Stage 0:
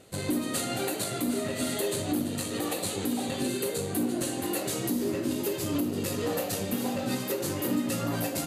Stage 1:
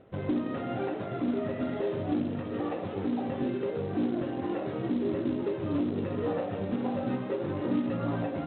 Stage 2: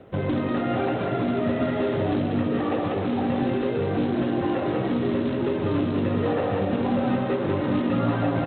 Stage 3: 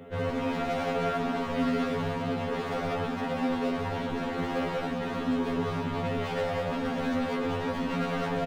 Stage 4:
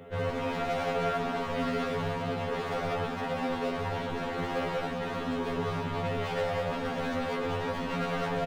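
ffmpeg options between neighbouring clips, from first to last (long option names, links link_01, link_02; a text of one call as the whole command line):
ffmpeg -i in.wav -af "lowpass=1400,aresample=8000,acrusher=bits=6:mode=log:mix=0:aa=0.000001,aresample=44100" out.wav
ffmpeg -i in.wav -filter_complex "[0:a]acrossover=split=160|690|1600[link_01][link_02][link_03][link_04];[link_02]alimiter=level_in=6dB:limit=-24dB:level=0:latency=1:release=145,volume=-6dB[link_05];[link_01][link_05][link_03][link_04]amix=inputs=4:normalize=0,aecho=1:1:192:0.668,volume=8.5dB" out.wav
ffmpeg -i in.wav -af "volume=30dB,asoftclip=hard,volume=-30dB,aecho=1:1:7.3:0.92,afftfilt=real='re*2*eq(mod(b,4),0)':imag='im*2*eq(mod(b,4),0)':win_size=2048:overlap=0.75,volume=2dB" out.wav
ffmpeg -i in.wav -af "equalizer=frequency=250:width_type=o:width=0.64:gain=-6" out.wav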